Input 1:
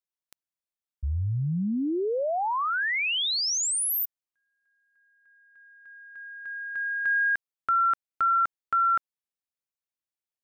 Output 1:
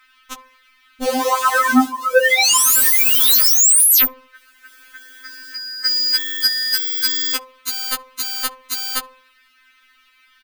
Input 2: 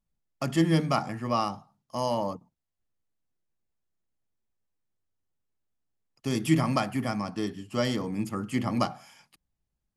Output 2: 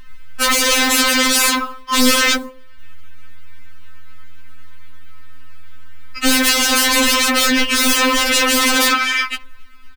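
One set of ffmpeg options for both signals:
ffmpeg -i in.wav -filter_complex "[0:a]firequalizer=gain_entry='entry(160,0);entry(320,-21);entry(730,-14);entry(1200,6);entry(2300,5);entry(6800,-19)':delay=0.05:min_phase=1,areverse,acompressor=threshold=-32dB:ratio=10:attack=0.29:release=54:knee=6:detection=peak,areverse,acrusher=bits=7:mode=log:mix=0:aa=0.000001,aeval=exprs='0.0422*sin(PI/2*8.91*val(0)/0.0422)':channel_layout=same,bandreject=frequency=770:width=21,bandreject=frequency=103.5:width_type=h:width=4,bandreject=frequency=207:width_type=h:width=4,bandreject=frequency=310.5:width_type=h:width=4,bandreject=frequency=414:width_type=h:width=4,bandreject=frequency=517.5:width_type=h:width=4,bandreject=frequency=621:width_type=h:width=4,bandreject=frequency=724.5:width_type=h:width=4,bandreject=frequency=828:width_type=h:width=4,bandreject=frequency=931.5:width_type=h:width=4,bandreject=frequency=1035:width_type=h:width=4,bandreject=frequency=1138.5:width_type=h:width=4,bandreject=frequency=1242:width_type=h:width=4,bandreject=frequency=1345.5:width_type=h:width=4,bandreject=frequency=1449:width_type=h:width=4,asplit=2[link_01][link_02];[link_02]adelay=69,lowpass=frequency=910:poles=1,volume=-21dB,asplit=2[link_03][link_04];[link_04]adelay=69,lowpass=frequency=910:poles=1,volume=0.45,asplit=2[link_05][link_06];[link_06]adelay=69,lowpass=frequency=910:poles=1,volume=0.45[link_07];[link_03][link_05][link_07]amix=inputs=3:normalize=0[link_08];[link_01][link_08]amix=inputs=2:normalize=0,alimiter=level_in=29dB:limit=-1dB:release=50:level=0:latency=1,afftfilt=real='re*3.46*eq(mod(b,12),0)':imag='im*3.46*eq(mod(b,12),0)':win_size=2048:overlap=0.75,volume=-6dB" out.wav

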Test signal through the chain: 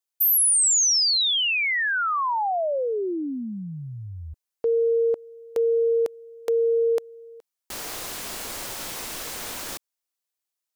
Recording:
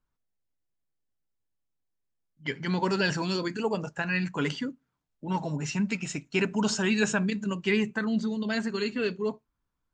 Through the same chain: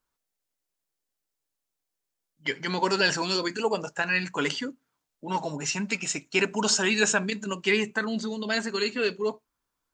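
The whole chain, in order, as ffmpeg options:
ffmpeg -i in.wav -af "bass=frequency=250:gain=-12,treble=frequency=4000:gain=5,volume=4dB" out.wav

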